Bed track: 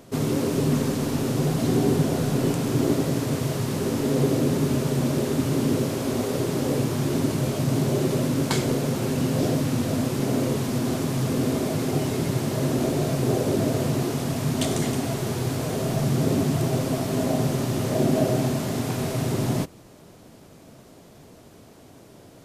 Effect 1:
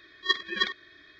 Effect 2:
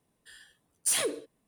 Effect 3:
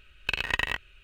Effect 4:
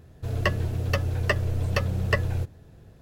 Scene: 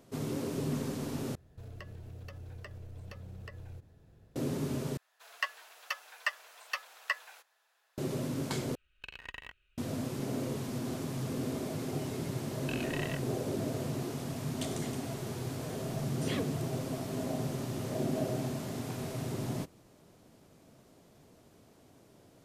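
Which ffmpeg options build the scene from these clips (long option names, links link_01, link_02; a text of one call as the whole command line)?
ffmpeg -i bed.wav -i cue0.wav -i cue1.wav -i cue2.wav -i cue3.wav -filter_complex "[4:a]asplit=2[link_01][link_02];[3:a]asplit=2[link_03][link_04];[0:a]volume=-11.5dB[link_05];[link_01]acompressor=threshold=-33dB:ratio=6:attack=3.2:release=140:knee=1:detection=peak[link_06];[link_02]highpass=frequency=920:width=0.5412,highpass=frequency=920:width=1.3066[link_07];[link_04]flanger=delay=22.5:depth=5:speed=2.7[link_08];[2:a]lowpass=3700[link_09];[link_05]asplit=4[link_10][link_11][link_12][link_13];[link_10]atrim=end=1.354[link_14];[link_06]atrim=end=3.01,asetpts=PTS-STARTPTS,volume=-10dB[link_15];[link_11]atrim=start=4.356:end=4.974[link_16];[link_07]atrim=end=3.01,asetpts=PTS-STARTPTS,volume=-5.5dB[link_17];[link_12]atrim=start=7.976:end=8.754[link_18];[link_03]atrim=end=1.03,asetpts=PTS-STARTPTS,volume=-18dB[link_19];[link_13]atrim=start=9.776[link_20];[link_08]atrim=end=1.03,asetpts=PTS-STARTPTS,volume=-10dB,afade=type=in:duration=0.004:curve=hsin,afade=type=out:start_time=1.026:duration=0.004:curve=hsin,adelay=12400[link_21];[link_09]atrim=end=1.47,asetpts=PTS-STARTPTS,volume=-7dB,afade=type=in:duration=0.004:curve=hsin,afade=type=out:start_time=1.466:duration=0.004:curve=hsin,adelay=15350[link_22];[link_14][link_15]acrossfade=duration=0.004:curve1=hsin:curve2=hsin[link_23];[link_23][link_16]acrossfade=duration=0.004:curve1=hsin:curve2=hsin[link_24];[link_24][link_17]acrossfade=duration=0.004:curve1=hsin:curve2=hsin[link_25];[link_25][link_18]acrossfade=duration=0.004:curve1=hsin:curve2=hsin[link_26];[link_26][link_19]acrossfade=duration=0.004:curve1=hsin:curve2=hsin[link_27];[link_27][link_20]acrossfade=duration=0.004:curve1=hsin:curve2=hsin[link_28];[link_28][link_21][link_22]amix=inputs=3:normalize=0" out.wav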